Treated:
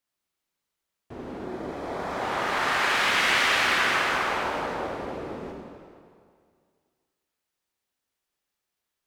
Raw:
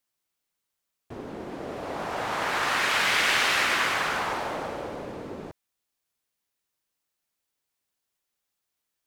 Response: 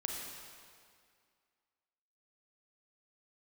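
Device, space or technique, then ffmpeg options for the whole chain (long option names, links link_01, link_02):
swimming-pool hall: -filter_complex "[1:a]atrim=start_sample=2205[link_01];[0:a][link_01]afir=irnorm=-1:irlink=0,highshelf=frequency=5700:gain=-5.5,asettb=1/sr,asplit=3[link_02][link_03][link_04];[link_02]atrim=end=1.454[link_05];[link_03]atrim=start=1.45:end=2.23,asetpts=PTS-STARTPTS,afade=type=in:duration=0.004:curve=qsin,afade=type=out:start_time=0.776:duration=0.004:curve=qsin,bandreject=frequency=2800:width=8.4[link_06];[link_04]atrim=start=2.226[link_07];[link_05][link_06]acrossfade=duration=0.004:curve1=hsin:curve2=qsin[link_08];[link_08][link_07]acrossfade=duration=0.004:curve1=qsin:curve2=hsin"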